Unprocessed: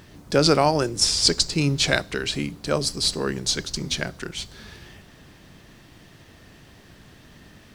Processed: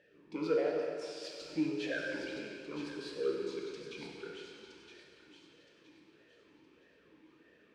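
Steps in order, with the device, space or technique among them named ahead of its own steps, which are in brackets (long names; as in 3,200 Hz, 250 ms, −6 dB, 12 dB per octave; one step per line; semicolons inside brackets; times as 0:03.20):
0:00.78–0:01.41: Butterworth high-pass 2,500 Hz
talk box (tube saturation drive 15 dB, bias 0.25; formant filter swept between two vowels e-u 1.6 Hz)
delay with a high-pass on its return 967 ms, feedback 31%, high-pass 2,500 Hz, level −7 dB
dense smooth reverb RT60 2.5 s, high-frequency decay 0.85×, DRR −1.5 dB
level −4.5 dB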